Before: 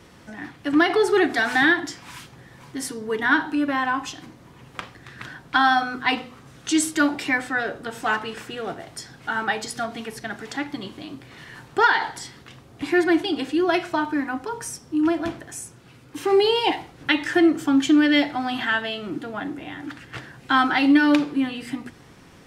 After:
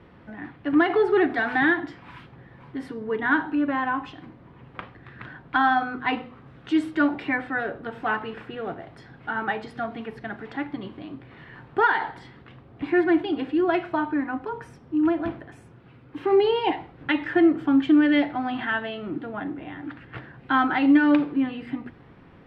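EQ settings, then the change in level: air absorption 460 m; 0.0 dB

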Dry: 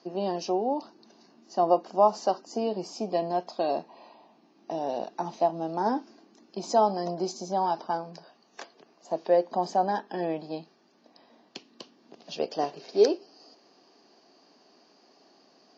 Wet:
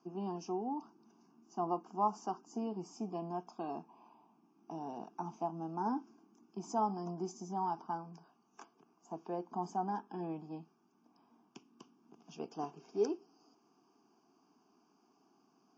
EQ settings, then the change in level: bell 3500 Hz -14 dB 1.8 oct; fixed phaser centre 2800 Hz, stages 8; -3.5 dB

